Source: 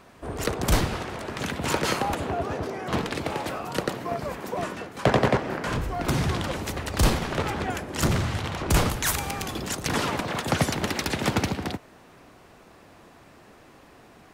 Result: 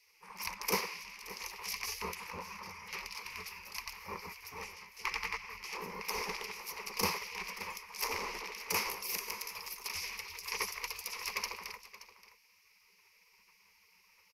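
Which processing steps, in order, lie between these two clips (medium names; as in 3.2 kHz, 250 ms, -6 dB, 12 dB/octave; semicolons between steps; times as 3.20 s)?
spectral gate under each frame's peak -15 dB weak; rippled EQ curve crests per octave 0.83, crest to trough 16 dB; delay 575 ms -16 dB; trim -8 dB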